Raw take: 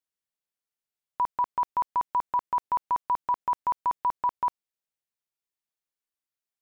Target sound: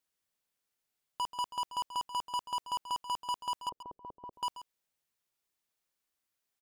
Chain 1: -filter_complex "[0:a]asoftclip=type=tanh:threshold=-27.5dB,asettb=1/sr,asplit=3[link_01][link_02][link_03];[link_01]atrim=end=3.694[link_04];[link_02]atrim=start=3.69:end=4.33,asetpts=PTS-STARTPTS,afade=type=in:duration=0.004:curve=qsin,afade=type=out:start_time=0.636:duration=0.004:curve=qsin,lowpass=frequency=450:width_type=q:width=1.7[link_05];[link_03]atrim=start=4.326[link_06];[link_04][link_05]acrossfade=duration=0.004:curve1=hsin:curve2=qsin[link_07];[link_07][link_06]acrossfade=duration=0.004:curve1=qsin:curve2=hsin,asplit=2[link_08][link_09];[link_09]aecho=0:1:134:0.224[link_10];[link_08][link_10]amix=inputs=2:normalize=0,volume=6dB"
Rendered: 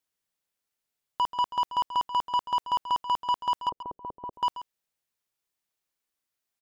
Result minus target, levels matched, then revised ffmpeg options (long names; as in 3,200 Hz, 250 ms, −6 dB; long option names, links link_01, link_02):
soft clipping: distortion −5 dB
-filter_complex "[0:a]asoftclip=type=tanh:threshold=-37dB,asettb=1/sr,asplit=3[link_01][link_02][link_03];[link_01]atrim=end=3.694[link_04];[link_02]atrim=start=3.69:end=4.33,asetpts=PTS-STARTPTS,afade=type=in:duration=0.004:curve=qsin,afade=type=out:start_time=0.636:duration=0.004:curve=qsin,lowpass=frequency=450:width_type=q:width=1.7[link_05];[link_03]atrim=start=4.326[link_06];[link_04][link_05]acrossfade=duration=0.004:curve1=hsin:curve2=qsin[link_07];[link_07][link_06]acrossfade=duration=0.004:curve1=qsin:curve2=hsin,asplit=2[link_08][link_09];[link_09]aecho=0:1:134:0.224[link_10];[link_08][link_10]amix=inputs=2:normalize=0,volume=6dB"